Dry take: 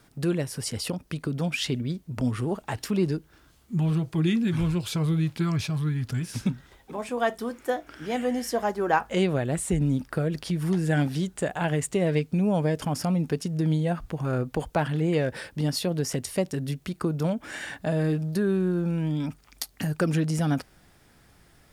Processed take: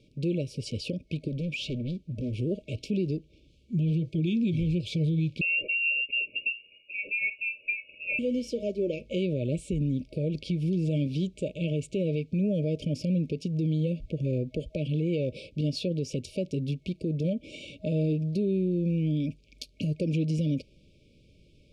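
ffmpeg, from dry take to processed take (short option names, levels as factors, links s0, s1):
-filter_complex "[0:a]asettb=1/sr,asplit=3[s0][s1][s2];[s0]atrim=end=1.284[s3];[s1]atrim=start=1.28:end=2.34,asetpts=PTS-STARTPTS,afade=t=in:d=0.004:c=qsin,afade=t=out:st=1.056:d=0.004:c=qsin,asoftclip=type=hard:threshold=0.0355[s4];[s2]atrim=start=2.336[s5];[s3][s4]acrossfade=d=0.004:c1=hsin:c2=qsin[s6];[s6][s5]acrossfade=d=0.004:c1=qsin:c2=hsin,asettb=1/sr,asplit=3[s7][s8][s9];[s7]atrim=end=5.414[s10];[s8]atrim=start=5.41:end=8.19,asetpts=PTS-STARTPTS,afade=t=in:d=0.004:c=qsin,afade=t=out:st=2.776:d=0.004:c=qsin,lowpass=f=2500:t=q:w=0.5098,lowpass=f=2500:t=q:w=0.6013,lowpass=f=2500:t=q:w=0.9,lowpass=f=2500:t=q:w=2.563,afreqshift=-2900[s11];[s9]atrim=start=8.186[s12];[s10][s11]acrossfade=d=0.004:c1=hsin:c2=qsin[s13];[s13][s12]acrossfade=d=0.004:c1=qsin:c2=hsin,lowpass=3800,afftfilt=real='re*(1-between(b*sr/4096,630,2200))':imag='im*(1-between(b*sr/4096,630,2200))':win_size=4096:overlap=0.75,alimiter=limit=0.0944:level=0:latency=1:release=86"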